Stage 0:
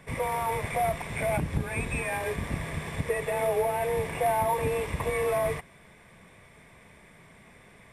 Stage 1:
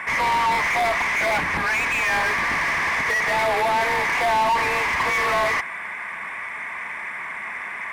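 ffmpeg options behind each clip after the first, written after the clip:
ffmpeg -i in.wav -filter_complex "[0:a]equalizer=frequency=125:width_type=o:width=1:gain=-11,equalizer=frequency=500:width_type=o:width=1:gain=-10,equalizer=frequency=1000:width_type=o:width=1:gain=8,equalizer=frequency=2000:width_type=o:width=1:gain=11,equalizer=frequency=4000:width_type=o:width=1:gain=-8,asplit=2[link_01][link_02];[link_02]highpass=frequency=720:poles=1,volume=28dB,asoftclip=type=tanh:threshold=-12dB[link_03];[link_01][link_03]amix=inputs=2:normalize=0,lowpass=frequency=2400:poles=1,volume=-6dB,volume=-1.5dB" out.wav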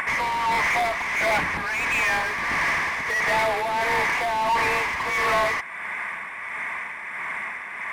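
ffmpeg -i in.wav -af "acompressor=mode=upward:threshold=-25dB:ratio=2.5,tremolo=f=1.5:d=0.46" out.wav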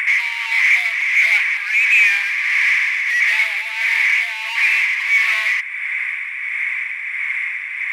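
ffmpeg -i in.wav -af "highpass=frequency=2300:width_type=q:width=4.1,volume=1dB" out.wav

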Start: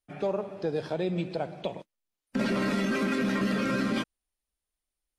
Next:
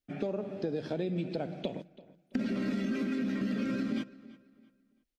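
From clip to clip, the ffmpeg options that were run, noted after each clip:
ffmpeg -i in.wav -filter_complex "[0:a]equalizer=frequency=250:width_type=o:width=0.67:gain=9,equalizer=frequency=1000:width_type=o:width=0.67:gain=-9,equalizer=frequency=10000:width_type=o:width=0.67:gain=-9,acompressor=threshold=-29dB:ratio=10,asplit=2[link_01][link_02];[link_02]adelay=334,lowpass=frequency=4900:poles=1,volume=-19dB,asplit=2[link_03][link_04];[link_04]adelay=334,lowpass=frequency=4900:poles=1,volume=0.33,asplit=2[link_05][link_06];[link_06]adelay=334,lowpass=frequency=4900:poles=1,volume=0.33[link_07];[link_01][link_03][link_05][link_07]amix=inputs=4:normalize=0" out.wav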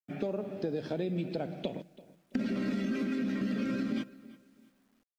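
ffmpeg -i in.wav -af "acrusher=bits=11:mix=0:aa=0.000001" out.wav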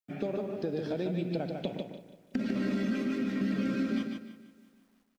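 ffmpeg -i in.wav -af "aecho=1:1:149|298|447:0.562|0.141|0.0351" out.wav

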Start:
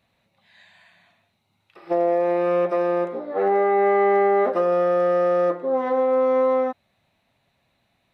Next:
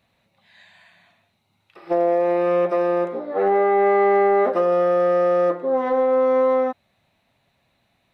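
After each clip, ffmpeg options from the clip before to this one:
ffmpeg -i in.wav -af "acontrast=32,volume=-3.5dB" out.wav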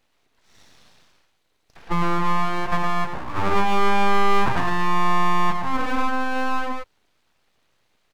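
ffmpeg -i in.wav -af "aecho=1:1:113:0.562,aeval=exprs='abs(val(0))':channel_layout=same" out.wav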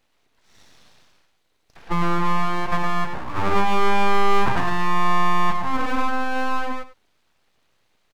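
ffmpeg -i in.wav -af "aecho=1:1:98:0.178" out.wav

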